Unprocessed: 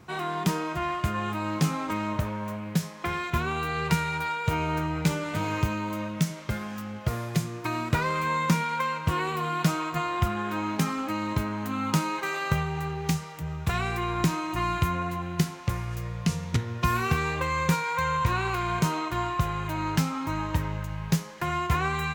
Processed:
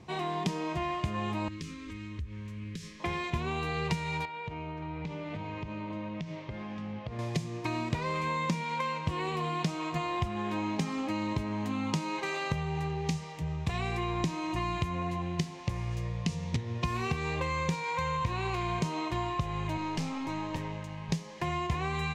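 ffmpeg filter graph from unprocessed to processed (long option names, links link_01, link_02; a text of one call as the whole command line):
ffmpeg -i in.wav -filter_complex "[0:a]asettb=1/sr,asplit=3[link_01][link_02][link_03];[link_01]atrim=end=1.484[link_04];[link_02]atrim=start=1.48:end=3,asetpts=PTS-STARTPTS,afade=type=in:duration=0.004:curve=qsin,afade=type=out:start_time=1.516:duration=0.004:curve=qsin,lowshelf=frequency=100:width_type=q:width=3:gain=11,acompressor=threshold=-35dB:ratio=6:attack=3.2:release=140:knee=1:detection=peak,asuperstop=centerf=740:order=4:qfactor=0.75[link_05];[link_03]atrim=start=2.996[link_06];[link_04][link_05]acrossfade=duration=0.004:curve1=hsin:curve2=qsin[link_07];[link_07][link_06]acrossfade=duration=0.004:curve1=qsin:curve2=hsin,asettb=1/sr,asplit=3[link_08][link_09][link_10];[link_08]atrim=end=4.254[link_11];[link_09]atrim=start=4.25:end=7.19,asetpts=PTS-STARTPTS,afade=type=in:duration=0.004:curve=qsin,afade=type=out:start_time=2.936:duration=0.004:curve=qsin,lowpass=3200,acompressor=threshold=-33dB:ratio=16:attack=3.2:release=140:knee=1:detection=peak,aecho=1:1:572:0.237,atrim=end_sample=129654[link_12];[link_10]atrim=start=7.186[link_13];[link_11][link_12]acrossfade=duration=0.004:curve1=hsin:curve2=qsin[link_14];[link_14][link_13]acrossfade=duration=0.004:curve1=qsin:curve2=hsin,asettb=1/sr,asplit=3[link_15][link_16][link_17];[link_15]atrim=end=19.774[link_18];[link_16]atrim=start=19.77:end=21.09,asetpts=PTS-STARTPTS,afade=type=in:duration=0.004:curve=qsin,afade=type=out:start_time=1.316:duration=0.004:curve=qsin,highpass=160,aeval=exprs='(tanh(20*val(0)+0.35)-tanh(0.35))/20':channel_layout=same[link_19];[link_17]atrim=start=21.086[link_20];[link_18][link_19]acrossfade=duration=0.004:curve1=hsin:curve2=qsin[link_21];[link_21][link_20]acrossfade=duration=0.004:curve1=qsin:curve2=hsin,lowpass=6700,equalizer=frequency=1400:width_type=o:width=0.37:gain=-14.5,acompressor=threshold=-28dB:ratio=4" out.wav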